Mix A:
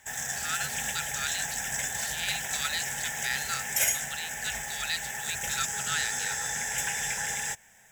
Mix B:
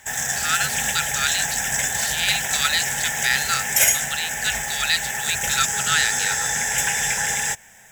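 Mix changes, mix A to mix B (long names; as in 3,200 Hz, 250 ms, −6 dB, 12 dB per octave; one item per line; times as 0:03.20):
speech +11.0 dB
background +9.0 dB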